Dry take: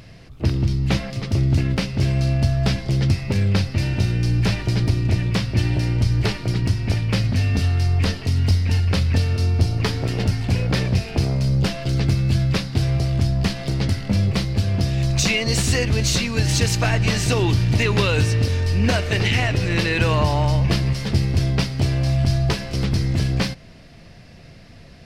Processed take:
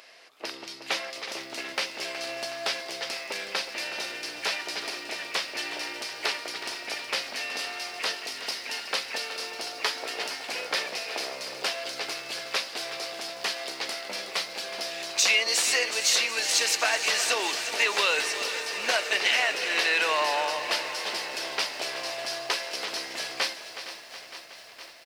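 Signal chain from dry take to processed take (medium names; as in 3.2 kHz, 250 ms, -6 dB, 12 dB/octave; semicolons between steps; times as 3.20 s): Bessel high-pass 740 Hz, order 4; on a send: feedback delay 369 ms, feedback 58%, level -12 dB; on the sum: bit-crushed delay 462 ms, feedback 80%, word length 8-bit, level -14.5 dB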